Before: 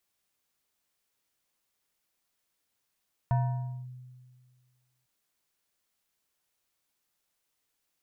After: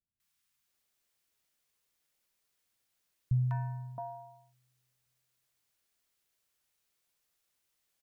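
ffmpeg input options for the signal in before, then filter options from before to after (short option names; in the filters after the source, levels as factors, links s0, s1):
-f lavfi -i "aevalsrc='0.0891*pow(10,-3*t/1.8)*sin(2*PI*126*t+0.53*clip(1-t/0.56,0,1)*sin(2*PI*6.51*126*t))':d=1.75:s=44100"
-filter_complex "[0:a]acrossover=split=250|900[s0][s1][s2];[s2]adelay=200[s3];[s1]adelay=670[s4];[s0][s4][s3]amix=inputs=3:normalize=0"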